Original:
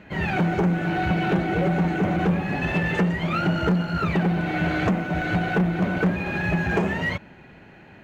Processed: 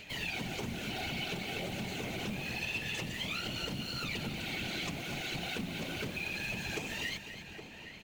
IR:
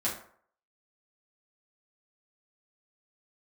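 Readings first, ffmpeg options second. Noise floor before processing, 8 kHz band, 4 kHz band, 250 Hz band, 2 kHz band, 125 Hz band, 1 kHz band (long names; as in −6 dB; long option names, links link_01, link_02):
−48 dBFS, can't be measured, +1.0 dB, −18.5 dB, −11.0 dB, −18.5 dB, −17.5 dB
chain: -filter_complex "[0:a]aexciter=amount=9.7:drive=4.9:freq=2400,asplit=2[link_01][link_02];[link_02]acrusher=bits=4:mix=0:aa=0.000001,volume=-5dB[link_03];[link_01][link_03]amix=inputs=2:normalize=0,afftfilt=real='hypot(re,im)*cos(2*PI*random(0))':imag='hypot(re,im)*sin(2*PI*random(1))':win_size=512:overlap=0.75,bandreject=frequency=50:width_type=h:width=6,bandreject=frequency=100:width_type=h:width=6,bandreject=frequency=150:width_type=h:width=6,bandreject=frequency=200:width_type=h:width=6,bandreject=frequency=250:width_type=h:width=6,bandreject=frequency=300:width_type=h:width=6,asplit=2[link_04][link_05];[link_05]adelay=816.3,volume=-18dB,highshelf=frequency=4000:gain=-18.4[link_06];[link_04][link_06]amix=inputs=2:normalize=0,acompressor=threshold=-30dB:ratio=2.5,asplit=2[link_07][link_08];[link_08]aecho=0:1:250|500|750|1000|1250:0.282|0.132|0.0623|0.0293|0.0138[link_09];[link_07][link_09]amix=inputs=2:normalize=0,acompressor=mode=upward:threshold=-35dB:ratio=2.5,volume=-8.5dB"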